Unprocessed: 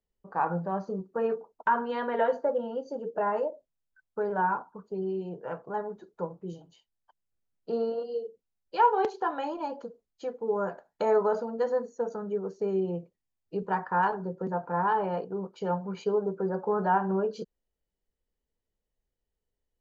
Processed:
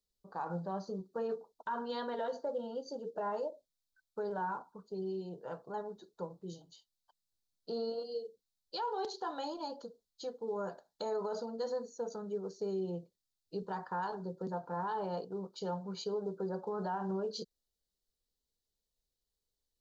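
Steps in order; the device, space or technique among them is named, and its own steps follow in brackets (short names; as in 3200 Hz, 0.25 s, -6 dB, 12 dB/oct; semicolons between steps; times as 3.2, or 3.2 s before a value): over-bright horn tweeter (resonant high shelf 3100 Hz +9 dB, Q 3; limiter -22.5 dBFS, peak gain reduction 9.5 dB); gain -6.5 dB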